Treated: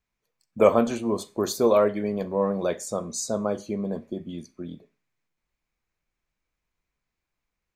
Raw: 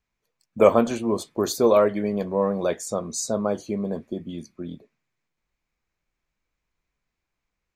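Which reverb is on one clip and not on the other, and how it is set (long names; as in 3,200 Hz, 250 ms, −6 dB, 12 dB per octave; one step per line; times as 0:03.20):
four-comb reverb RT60 0.34 s, combs from 30 ms, DRR 17.5 dB
level −2 dB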